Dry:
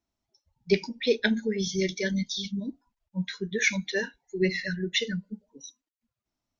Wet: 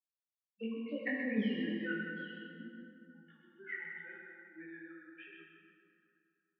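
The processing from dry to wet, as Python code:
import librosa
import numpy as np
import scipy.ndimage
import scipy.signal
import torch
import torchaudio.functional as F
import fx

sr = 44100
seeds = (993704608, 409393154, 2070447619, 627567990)

p1 = fx.bin_expand(x, sr, power=2.0)
p2 = fx.doppler_pass(p1, sr, speed_mps=49, closest_m=2.5, pass_at_s=1.41)
p3 = fx.chorus_voices(p2, sr, voices=2, hz=1.2, base_ms=20, depth_ms=3.0, mix_pct=45)
p4 = fx.over_compress(p3, sr, threshold_db=-52.0, ratio=-1.0)
p5 = p3 + F.gain(torch.from_numpy(p4), -0.5).numpy()
p6 = fx.dynamic_eq(p5, sr, hz=760.0, q=0.78, threshold_db=-56.0, ratio=4.0, max_db=-4)
p7 = scipy.signal.sosfilt(scipy.signal.cheby1(5, 1.0, [210.0, 2700.0], 'bandpass', fs=sr, output='sos'), p6)
p8 = fx.peak_eq(p7, sr, hz=580.0, db=-6.5, octaves=0.97)
p9 = fx.notch(p8, sr, hz=940.0, q=7.0)
p10 = p9 + fx.echo_single(p9, sr, ms=129, db=-6.5, dry=0)
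p11 = fx.rev_plate(p10, sr, seeds[0], rt60_s=2.7, hf_ratio=0.55, predelay_ms=0, drr_db=-2.0)
y = F.gain(torch.from_numpy(p11), 10.5).numpy()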